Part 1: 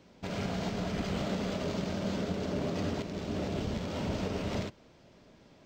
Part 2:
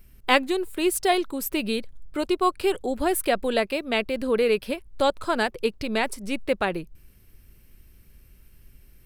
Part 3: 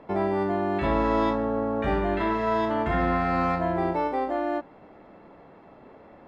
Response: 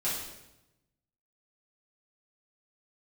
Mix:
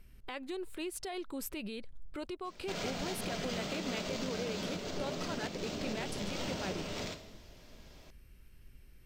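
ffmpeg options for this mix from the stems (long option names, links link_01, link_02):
-filter_complex "[0:a]lowshelf=frequency=160:gain=-7.5,alimiter=level_in=5.5dB:limit=-24dB:level=0:latency=1:release=289,volume=-5.5dB,adelay=2450,volume=-3dB,asplit=2[link_01][link_02];[link_02]volume=-12dB[link_03];[1:a]aemphasis=mode=reproduction:type=75fm,acompressor=threshold=-27dB:ratio=5,alimiter=level_in=3.5dB:limit=-24dB:level=0:latency=1:release=71,volume=-3.5dB,volume=-5.5dB[link_04];[3:a]atrim=start_sample=2205[link_05];[link_03][link_05]afir=irnorm=-1:irlink=0[link_06];[link_01][link_04][link_06]amix=inputs=3:normalize=0,highshelf=frequency=2600:gain=10"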